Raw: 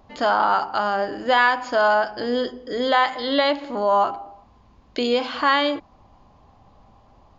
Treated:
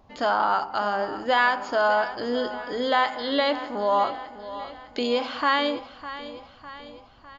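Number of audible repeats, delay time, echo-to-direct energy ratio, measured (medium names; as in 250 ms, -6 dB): 4, 604 ms, -12.5 dB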